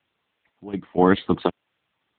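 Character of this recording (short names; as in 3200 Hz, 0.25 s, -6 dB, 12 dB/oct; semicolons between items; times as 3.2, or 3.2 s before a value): random-step tremolo 4.1 Hz, depth 95%; a quantiser's noise floor 12-bit, dither triangular; AMR-NB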